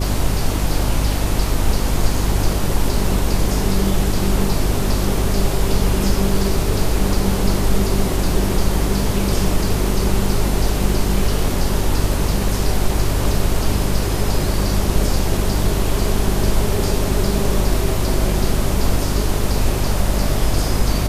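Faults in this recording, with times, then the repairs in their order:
hum 50 Hz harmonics 7 -21 dBFS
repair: de-hum 50 Hz, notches 7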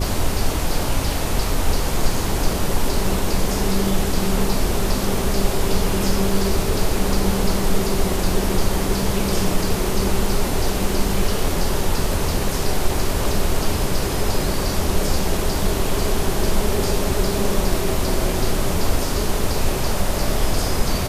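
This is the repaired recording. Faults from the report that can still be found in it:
none

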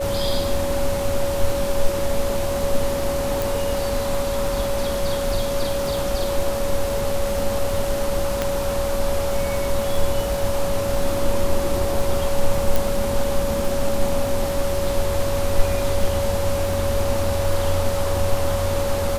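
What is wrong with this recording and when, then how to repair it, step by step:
crackle 49/s -27 dBFS
tone 560 Hz -23 dBFS
3.42 pop
8.42 pop
12.76 pop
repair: de-click; notch 560 Hz, Q 30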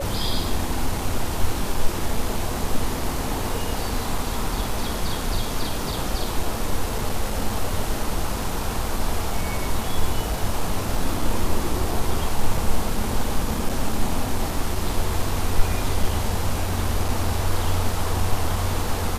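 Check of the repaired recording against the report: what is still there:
8.42 pop

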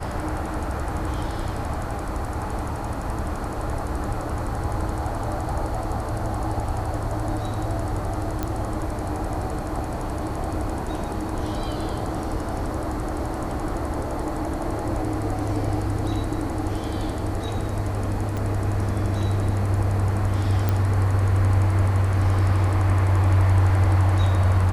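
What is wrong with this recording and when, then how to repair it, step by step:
8.43 pop -12 dBFS
18.37 pop
20.69 pop -10 dBFS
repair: de-click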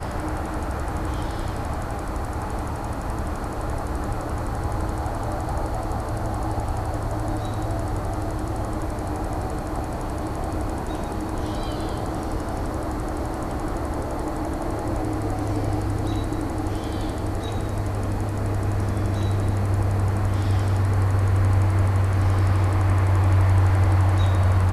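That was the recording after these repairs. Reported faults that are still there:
18.37 pop

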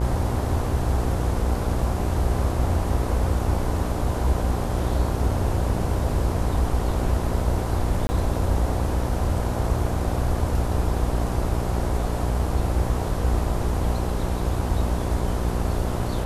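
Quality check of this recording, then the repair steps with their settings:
buzz 60 Hz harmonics 17 -27 dBFS
8.07–8.09 gap 20 ms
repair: de-hum 60 Hz, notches 17; interpolate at 8.07, 20 ms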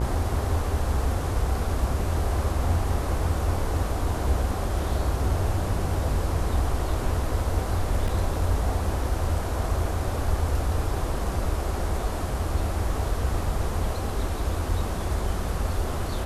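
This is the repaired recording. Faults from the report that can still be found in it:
none

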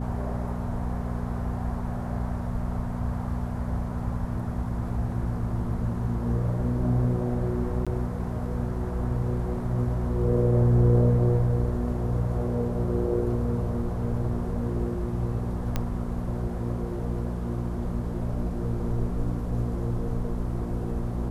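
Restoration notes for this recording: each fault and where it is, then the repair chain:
hum 60 Hz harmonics 4 -31 dBFS
7.85–7.87 gap 16 ms
15.76 pop -13 dBFS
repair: de-click; de-hum 60 Hz, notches 4; interpolate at 7.85, 16 ms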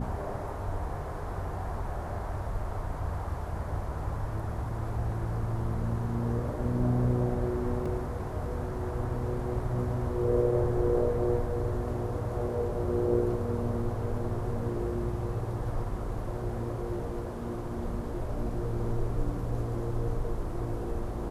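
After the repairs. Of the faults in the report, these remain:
15.76 pop

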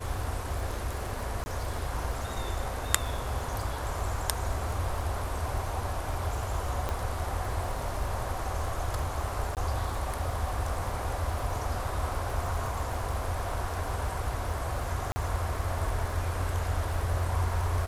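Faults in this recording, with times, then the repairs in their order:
crackle 52/s -36 dBFS
1.44–1.46 gap 20 ms
6.89 pop -17 dBFS
9.55–9.57 gap 18 ms
15.12–15.16 gap 40 ms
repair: de-click; interpolate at 1.44, 20 ms; interpolate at 9.55, 18 ms; interpolate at 15.12, 40 ms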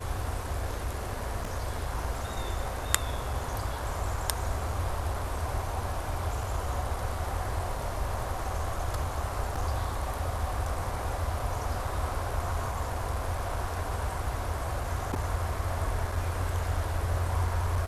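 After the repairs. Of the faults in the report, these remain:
none

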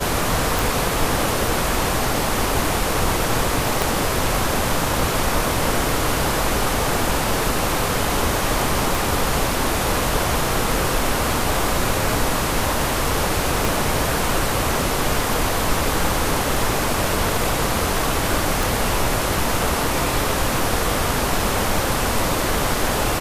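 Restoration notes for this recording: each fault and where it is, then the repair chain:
0.59 pop
3.82 pop
8.95 pop
13.65 pop
18.63 pop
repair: de-click

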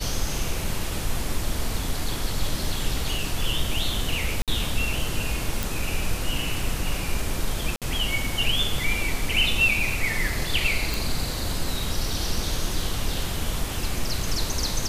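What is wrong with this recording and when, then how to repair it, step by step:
4.42–4.48 gap 57 ms
5.63 pop
7.76–7.82 gap 57 ms
10.94 pop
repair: de-click; interpolate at 4.42, 57 ms; interpolate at 7.76, 57 ms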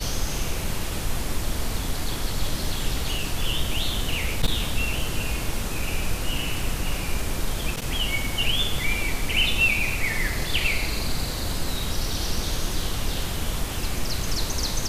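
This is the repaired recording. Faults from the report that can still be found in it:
none

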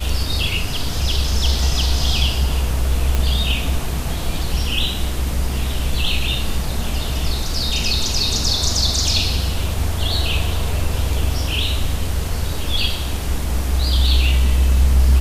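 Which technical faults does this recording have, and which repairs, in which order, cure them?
3.15 pop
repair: de-click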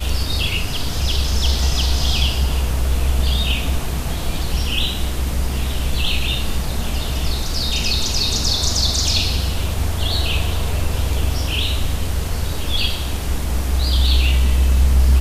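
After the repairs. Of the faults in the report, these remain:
none

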